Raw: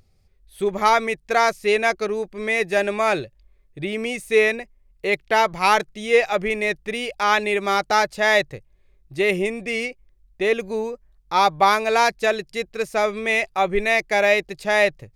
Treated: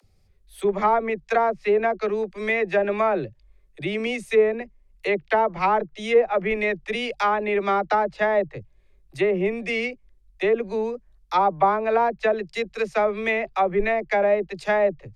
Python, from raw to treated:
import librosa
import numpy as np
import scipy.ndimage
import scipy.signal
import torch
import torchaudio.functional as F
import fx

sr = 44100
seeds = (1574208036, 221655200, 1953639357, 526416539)

y = fx.env_lowpass_down(x, sr, base_hz=910.0, full_db=-14.5)
y = fx.dispersion(y, sr, late='lows', ms=46.0, hz=310.0)